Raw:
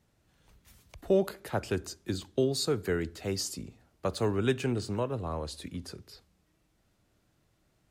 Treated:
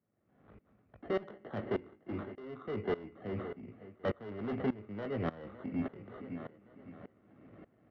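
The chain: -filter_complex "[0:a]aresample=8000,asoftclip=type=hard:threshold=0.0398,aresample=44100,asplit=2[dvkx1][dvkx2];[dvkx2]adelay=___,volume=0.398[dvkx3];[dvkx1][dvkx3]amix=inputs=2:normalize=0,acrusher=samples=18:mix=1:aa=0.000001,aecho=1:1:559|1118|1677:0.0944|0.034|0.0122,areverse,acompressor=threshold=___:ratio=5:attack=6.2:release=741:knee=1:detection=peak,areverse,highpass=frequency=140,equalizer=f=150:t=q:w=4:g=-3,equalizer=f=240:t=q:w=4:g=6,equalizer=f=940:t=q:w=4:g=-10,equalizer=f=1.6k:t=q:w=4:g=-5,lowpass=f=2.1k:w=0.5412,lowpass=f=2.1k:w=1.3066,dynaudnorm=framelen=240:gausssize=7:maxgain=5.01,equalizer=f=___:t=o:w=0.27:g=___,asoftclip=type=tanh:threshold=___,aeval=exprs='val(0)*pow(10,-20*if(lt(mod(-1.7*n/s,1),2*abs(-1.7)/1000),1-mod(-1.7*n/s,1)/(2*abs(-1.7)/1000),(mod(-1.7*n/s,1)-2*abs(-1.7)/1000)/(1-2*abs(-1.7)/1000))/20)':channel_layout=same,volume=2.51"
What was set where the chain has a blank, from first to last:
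19, 0.00447, 270, -2.5, 0.0266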